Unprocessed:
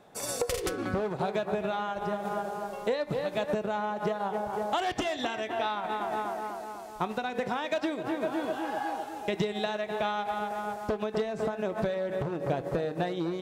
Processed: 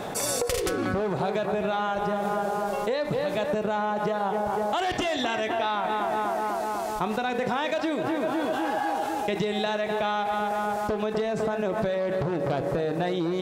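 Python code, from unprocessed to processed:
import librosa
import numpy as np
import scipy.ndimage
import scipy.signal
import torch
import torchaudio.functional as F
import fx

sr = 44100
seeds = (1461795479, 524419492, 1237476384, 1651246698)

y = fx.self_delay(x, sr, depth_ms=0.11, at=(12.0, 12.7))
y = fx.env_flatten(y, sr, amount_pct=70)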